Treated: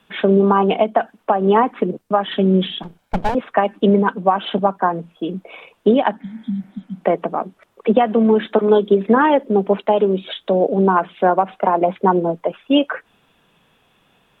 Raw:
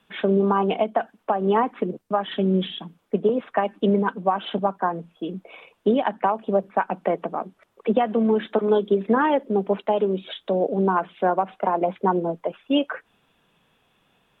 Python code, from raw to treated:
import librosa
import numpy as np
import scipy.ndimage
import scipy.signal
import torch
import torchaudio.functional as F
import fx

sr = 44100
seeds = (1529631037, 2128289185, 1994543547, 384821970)

y = fx.lower_of_two(x, sr, delay_ms=1.3, at=(2.83, 3.35))
y = fx.spec_repair(y, sr, seeds[0], start_s=6.23, length_s=0.74, low_hz=270.0, high_hz=3100.0, source='both')
y = y * 10.0 ** (6.0 / 20.0)